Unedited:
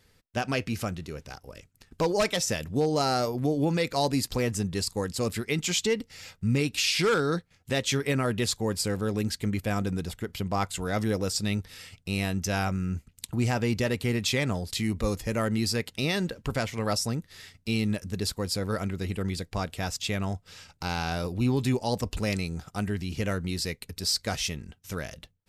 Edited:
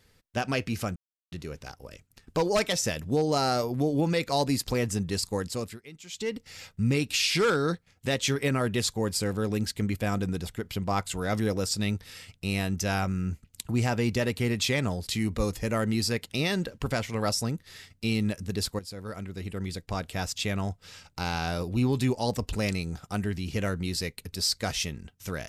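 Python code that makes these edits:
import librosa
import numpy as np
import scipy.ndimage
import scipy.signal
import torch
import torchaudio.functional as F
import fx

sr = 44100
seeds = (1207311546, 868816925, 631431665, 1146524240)

y = fx.edit(x, sr, fx.insert_silence(at_s=0.96, length_s=0.36),
    fx.fade_down_up(start_s=5.06, length_s=1.06, db=-18.5, fade_s=0.4),
    fx.fade_in_from(start_s=18.43, length_s=1.41, floor_db=-13.0), tone=tone)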